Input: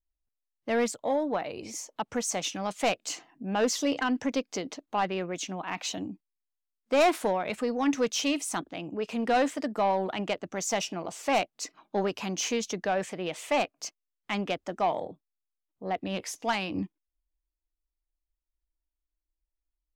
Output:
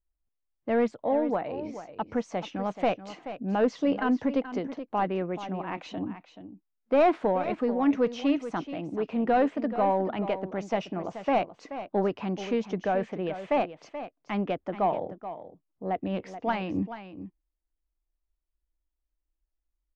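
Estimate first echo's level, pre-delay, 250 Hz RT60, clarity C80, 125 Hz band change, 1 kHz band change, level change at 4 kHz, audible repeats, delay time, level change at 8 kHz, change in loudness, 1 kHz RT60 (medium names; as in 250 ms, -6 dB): -12.0 dB, no reverb, no reverb, no reverb, +3.5 dB, +1.0 dB, -9.5 dB, 1, 430 ms, under -20 dB, +1.0 dB, no reverb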